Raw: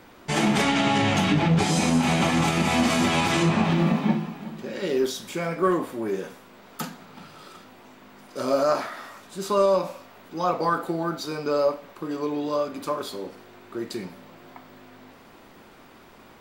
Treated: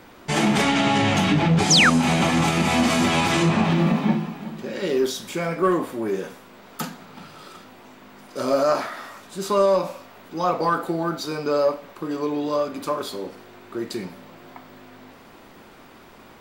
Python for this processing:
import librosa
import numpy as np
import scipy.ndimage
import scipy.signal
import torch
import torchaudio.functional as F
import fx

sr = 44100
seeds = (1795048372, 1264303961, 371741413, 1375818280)

p1 = 10.0 ** (-19.5 / 20.0) * np.tanh(x / 10.0 ** (-19.5 / 20.0))
p2 = x + F.gain(torch.from_numpy(p1), -8.5).numpy()
y = fx.spec_paint(p2, sr, seeds[0], shape='fall', start_s=1.7, length_s=0.2, low_hz=1100.0, high_hz=7300.0, level_db=-15.0)